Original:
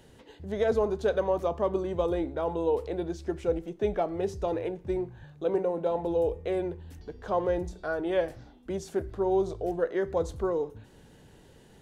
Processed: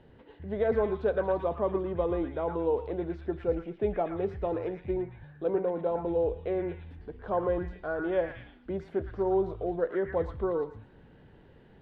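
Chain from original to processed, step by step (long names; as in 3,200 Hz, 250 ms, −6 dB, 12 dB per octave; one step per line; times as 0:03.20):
high-frequency loss of the air 440 metres
echo through a band-pass that steps 113 ms, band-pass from 1,600 Hz, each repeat 0.7 octaves, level −1.5 dB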